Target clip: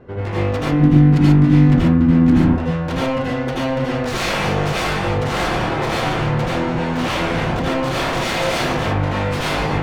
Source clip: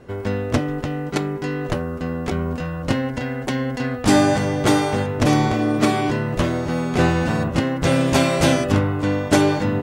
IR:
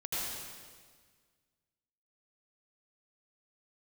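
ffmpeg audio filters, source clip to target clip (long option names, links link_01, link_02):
-filter_complex "[0:a]aeval=exprs='0.0891*(abs(mod(val(0)/0.0891+3,4)-2)-1)':channel_layout=same,adynamicsmooth=sensitivity=3:basefreq=2600,asoftclip=type=tanh:threshold=-22dB,asettb=1/sr,asplit=3[link_01][link_02][link_03];[link_01]atrim=end=0.724[link_04];[link_02]atrim=start=0.72:end=2.45,asetpts=PTS-STARTPTS,afade=type=in:duration=0.004:curve=qsin,afade=type=out:start_time=1.726:duration=0.004:curve=qsin,lowshelf=frequency=360:width_type=q:width=3:gain=7.5[link_05];[link_03]atrim=start=2.446[link_06];[link_04][link_05]acrossfade=duration=0.004:curve1=hsin:curve2=qsin[link_07];[link_07][link_06]acrossfade=duration=0.004:curve1=qsin:curve2=hsin[link_08];[1:a]atrim=start_sample=2205,atrim=end_sample=6615[link_09];[link_08][link_09]afir=irnorm=-1:irlink=0,volume=6dB"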